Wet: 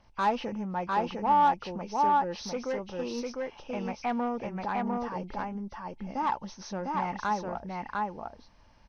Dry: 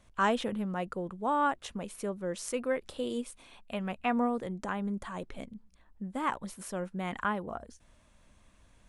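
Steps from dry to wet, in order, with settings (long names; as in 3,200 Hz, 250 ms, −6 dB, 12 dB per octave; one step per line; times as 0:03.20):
hearing-aid frequency compression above 2,000 Hz 1.5 to 1
single-tap delay 702 ms −3 dB
soft clipping −25 dBFS, distortion −14 dB
parametric band 860 Hz +13 dB 0.25 octaves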